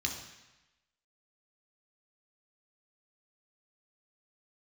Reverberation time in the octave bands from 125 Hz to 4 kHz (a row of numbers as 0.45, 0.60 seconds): 1.0, 0.95, 0.95, 1.1, 1.1, 1.0 seconds